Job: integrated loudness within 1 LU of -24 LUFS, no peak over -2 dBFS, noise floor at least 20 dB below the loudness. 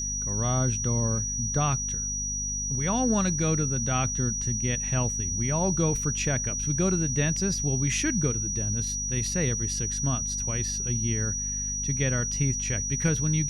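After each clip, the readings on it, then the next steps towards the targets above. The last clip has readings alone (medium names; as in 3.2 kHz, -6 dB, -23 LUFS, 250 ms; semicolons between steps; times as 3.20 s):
hum 50 Hz; highest harmonic 250 Hz; hum level -33 dBFS; steady tone 5.8 kHz; tone level -29 dBFS; loudness -26.0 LUFS; peak level -12.0 dBFS; loudness target -24.0 LUFS
-> de-hum 50 Hz, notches 5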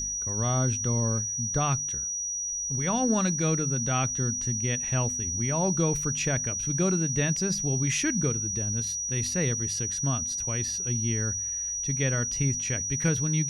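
hum not found; steady tone 5.8 kHz; tone level -29 dBFS
-> band-stop 5.8 kHz, Q 30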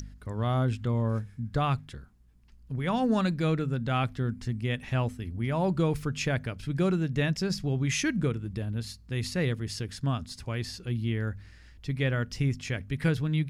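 steady tone not found; loudness -30.0 LUFS; peak level -13.0 dBFS; loudness target -24.0 LUFS
-> trim +6 dB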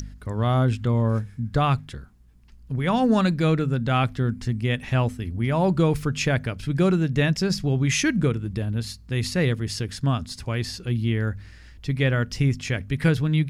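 loudness -24.0 LUFS; peak level -7.0 dBFS; noise floor -47 dBFS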